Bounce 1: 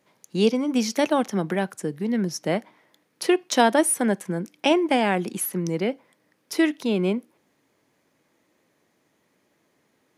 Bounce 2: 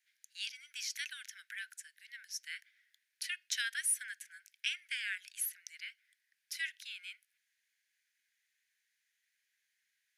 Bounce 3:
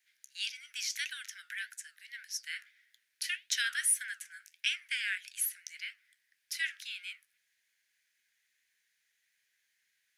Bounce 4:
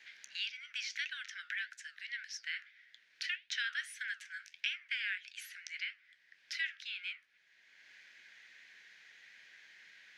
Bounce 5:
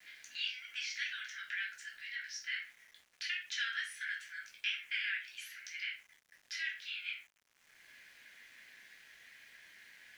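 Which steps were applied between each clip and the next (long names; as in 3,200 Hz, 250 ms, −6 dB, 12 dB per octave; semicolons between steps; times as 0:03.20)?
Butterworth high-pass 1,500 Hz 96 dB per octave; level −8.5 dB
flanger 1.7 Hz, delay 7.8 ms, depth 7.6 ms, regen −71%; level +8.5 dB
high-frequency loss of the air 200 metres; multiband upward and downward compressor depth 70%; level +2 dB
rectangular room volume 320 cubic metres, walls furnished, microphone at 3.1 metres; centre clipping without the shift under −57 dBFS; level −4.5 dB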